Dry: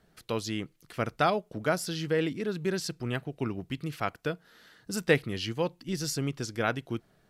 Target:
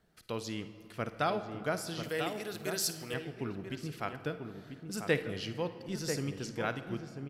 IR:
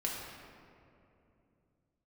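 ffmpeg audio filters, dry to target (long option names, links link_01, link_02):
-filter_complex "[0:a]asettb=1/sr,asplit=3[link_01][link_02][link_03];[link_01]atrim=end=2.034[link_04];[link_02]atrim=start=2.03:end=3.14,asetpts=PTS-STARTPTS,afade=type=in:duration=0.004:curve=qsin,afade=type=out:start_time=1.106:duration=0.004:curve=qsin,aemphasis=mode=production:type=riaa[link_05];[link_03]atrim=start=3.136[link_06];[link_04][link_05]acrossfade=duration=0.004:curve1=hsin:curve2=qsin[link_07];[link_07][link_06]acrossfade=duration=0.004:curve1=qsin:curve2=hsin,asplit=2[link_08][link_09];[link_09]adelay=991.3,volume=-6dB,highshelf=frequency=4000:gain=-22.3[link_10];[link_08][link_10]amix=inputs=2:normalize=0,asplit=2[link_11][link_12];[1:a]atrim=start_sample=2205,adelay=52[link_13];[link_12][link_13]afir=irnorm=-1:irlink=0,volume=-14dB[link_14];[link_11][link_14]amix=inputs=2:normalize=0,volume=-6dB"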